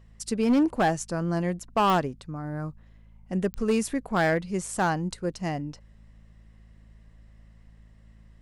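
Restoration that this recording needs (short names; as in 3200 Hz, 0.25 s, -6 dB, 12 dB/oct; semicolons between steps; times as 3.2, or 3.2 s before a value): clip repair -17 dBFS; de-click; de-hum 54.1 Hz, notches 4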